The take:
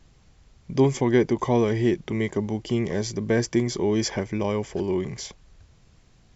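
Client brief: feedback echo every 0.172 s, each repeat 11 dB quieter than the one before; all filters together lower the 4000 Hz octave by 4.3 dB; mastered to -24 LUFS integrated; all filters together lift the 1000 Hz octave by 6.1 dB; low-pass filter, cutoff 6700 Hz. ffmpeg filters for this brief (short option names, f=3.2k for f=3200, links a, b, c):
-af "lowpass=6.7k,equalizer=f=1k:t=o:g=7.5,equalizer=f=4k:t=o:g=-5.5,aecho=1:1:172|344|516:0.282|0.0789|0.0221,volume=-0.5dB"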